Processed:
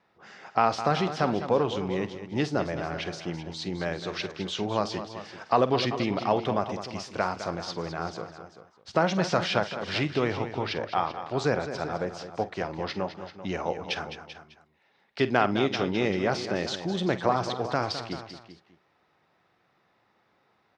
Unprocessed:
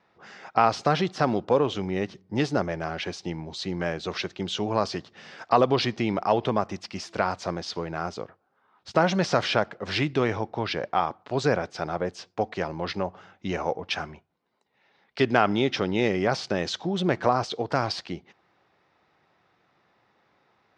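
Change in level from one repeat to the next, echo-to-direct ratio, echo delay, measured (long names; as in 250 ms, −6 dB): repeats not evenly spaced, −8.0 dB, 48 ms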